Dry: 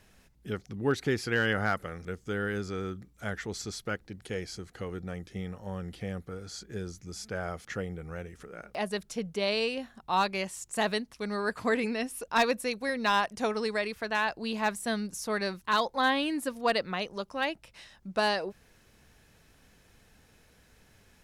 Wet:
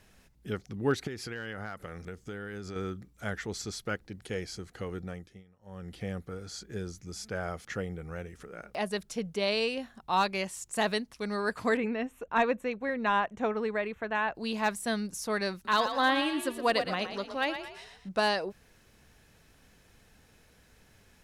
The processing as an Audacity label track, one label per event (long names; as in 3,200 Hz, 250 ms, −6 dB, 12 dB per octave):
1.070000	2.760000	downward compressor 5 to 1, threshold −36 dBFS
5.020000	6.010000	duck −23 dB, fades 0.42 s
11.770000	14.350000	moving average over 9 samples
15.530000	18.090000	echo with shifted repeats 116 ms, feedback 44%, per repeat +35 Hz, level −9 dB